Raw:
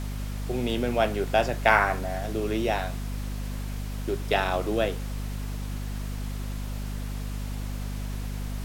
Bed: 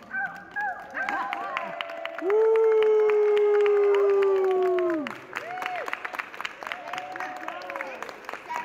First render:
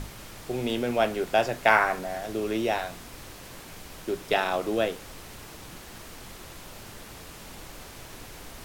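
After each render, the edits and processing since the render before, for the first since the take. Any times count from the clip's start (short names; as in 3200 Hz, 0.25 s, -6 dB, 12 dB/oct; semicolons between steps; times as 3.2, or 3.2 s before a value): notches 50/100/150/200/250 Hz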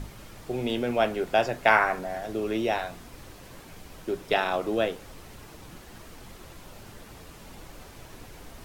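denoiser 6 dB, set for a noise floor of -45 dBFS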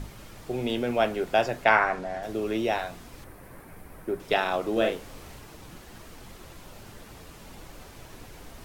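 1.64–2.23 air absorption 55 m; 3.24–4.2 band shelf 4500 Hz -11.5 dB; 4.72–5.39 doubler 41 ms -3.5 dB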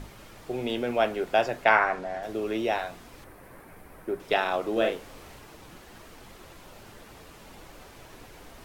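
tone controls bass -5 dB, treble -3 dB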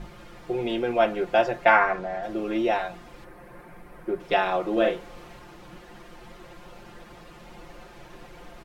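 LPF 3000 Hz 6 dB/oct; comb 5.7 ms, depth 99%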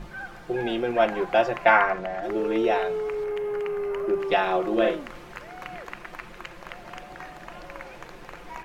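add bed -8 dB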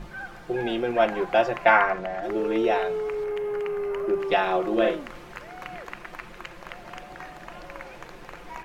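nothing audible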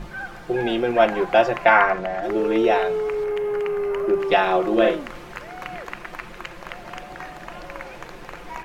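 gain +4.5 dB; limiter -3 dBFS, peak gain reduction 2.5 dB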